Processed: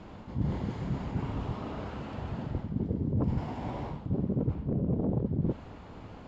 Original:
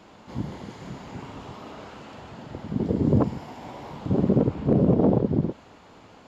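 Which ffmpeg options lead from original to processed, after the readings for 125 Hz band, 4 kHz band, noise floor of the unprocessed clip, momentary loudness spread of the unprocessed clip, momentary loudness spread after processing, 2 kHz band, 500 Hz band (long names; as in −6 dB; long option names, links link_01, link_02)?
−4.0 dB, can't be measured, −51 dBFS, 20 LU, 9 LU, −3.5 dB, −11.0 dB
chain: -af "aemphasis=mode=reproduction:type=bsi,areverse,acompressor=threshold=-26dB:ratio=10,areverse"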